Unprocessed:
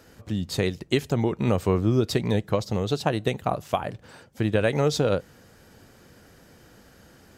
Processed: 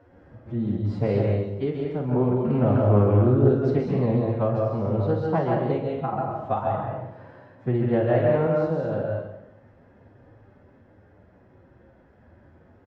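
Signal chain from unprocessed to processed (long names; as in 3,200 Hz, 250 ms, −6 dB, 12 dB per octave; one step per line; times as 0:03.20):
low-pass filter 1,100 Hz 12 dB per octave
parametric band 73 Hz +5.5 dB 0.3 octaves
phase-vocoder stretch with locked phases 1.9×
sample-and-hold tremolo 1.3 Hz
speed change +9%
double-tracking delay 48 ms −7 dB
dense smooth reverb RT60 0.82 s, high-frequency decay 0.95×, pre-delay 120 ms, DRR −0.5 dB
highs frequency-modulated by the lows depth 0.23 ms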